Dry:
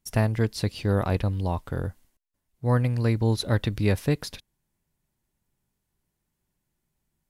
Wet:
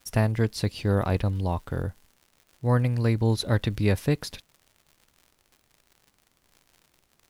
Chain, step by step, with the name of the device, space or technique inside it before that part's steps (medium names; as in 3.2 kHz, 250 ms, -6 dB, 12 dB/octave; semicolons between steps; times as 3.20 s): vinyl LP (crackle 100 per s -43 dBFS; pink noise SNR 43 dB)